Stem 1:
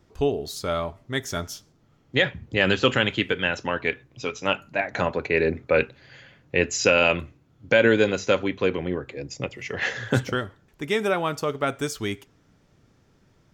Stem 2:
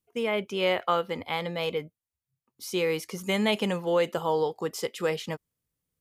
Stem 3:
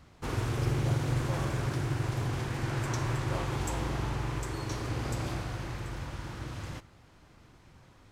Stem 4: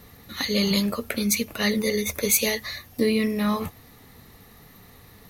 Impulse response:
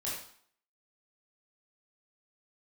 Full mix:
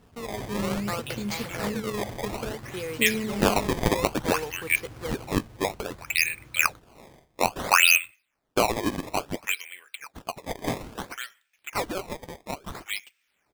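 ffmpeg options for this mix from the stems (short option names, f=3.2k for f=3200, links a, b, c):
-filter_complex "[0:a]highpass=f=2.4k:t=q:w=4,adelay=850,volume=-6dB[a];[1:a]aeval=exprs='val(0)*gte(abs(val(0)),0.0251)':c=same,volume=-7.5dB[b];[2:a]volume=-11.5dB[c];[3:a]highshelf=f=4.7k:g=-10,volume=-7dB[d];[a][b][c][d]amix=inputs=4:normalize=0,acrusher=samples=18:mix=1:aa=0.000001:lfo=1:lforange=28.8:lforate=0.59"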